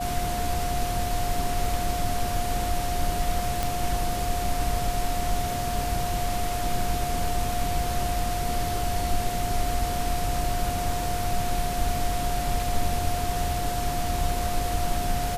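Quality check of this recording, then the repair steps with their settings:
whine 710 Hz -29 dBFS
3.63 s: pop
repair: de-click; band-stop 710 Hz, Q 30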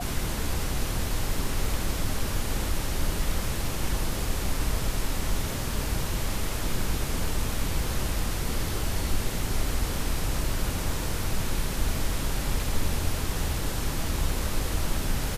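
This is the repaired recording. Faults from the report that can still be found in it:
nothing left

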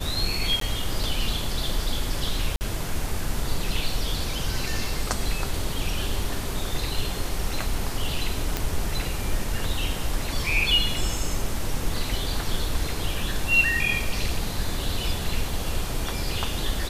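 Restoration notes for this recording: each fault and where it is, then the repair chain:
0.60–0.61 s: dropout 13 ms
2.56–2.61 s: dropout 49 ms
8.57 s: pop -9 dBFS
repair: de-click; interpolate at 0.60 s, 13 ms; interpolate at 2.56 s, 49 ms

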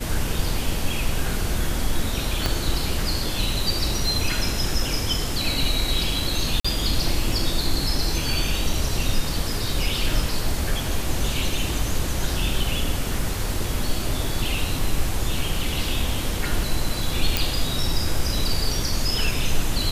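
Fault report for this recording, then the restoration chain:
2.46 s: pop -7 dBFS
6.60–6.64 s: dropout 45 ms
17.37 s: pop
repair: de-click; interpolate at 6.60 s, 45 ms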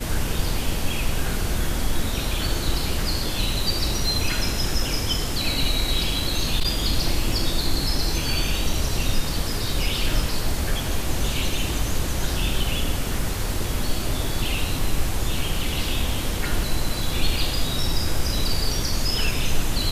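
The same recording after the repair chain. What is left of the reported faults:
2.46 s: pop

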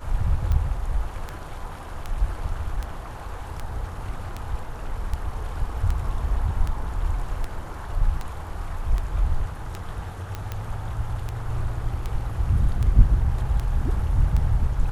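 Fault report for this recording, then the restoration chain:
tick 78 rpm -16 dBFS
10.35 s: pop -17 dBFS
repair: de-click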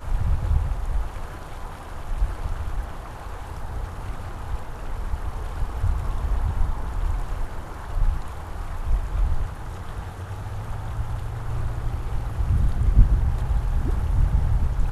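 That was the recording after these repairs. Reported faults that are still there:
10.35 s: pop

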